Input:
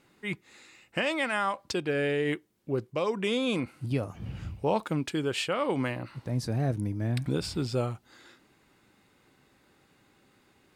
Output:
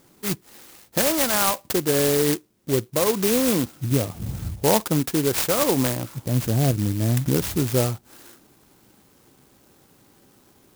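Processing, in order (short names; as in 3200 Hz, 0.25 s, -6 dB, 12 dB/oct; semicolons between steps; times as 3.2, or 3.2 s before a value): clock jitter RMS 0.14 ms; gain +8 dB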